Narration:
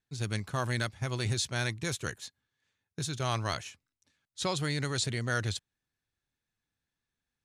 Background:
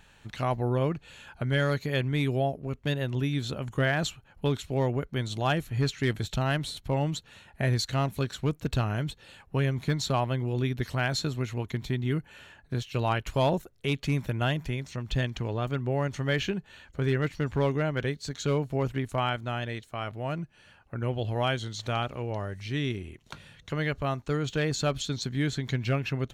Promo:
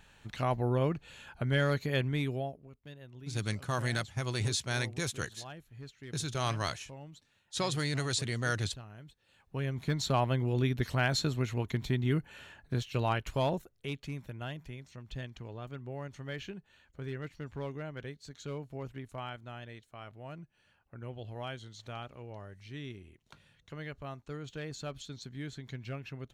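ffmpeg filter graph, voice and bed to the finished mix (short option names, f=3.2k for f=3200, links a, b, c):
-filter_complex "[0:a]adelay=3150,volume=-1dB[a];[1:a]volume=17dB,afade=t=out:st=1.99:d=0.71:silence=0.125893,afade=t=in:st=9.25:d=1:silence=0.105925,afade=t=out:st=12.61:d=1.54:silence=0.251189[b];[a][b]amix=inputs=2:normalize=0"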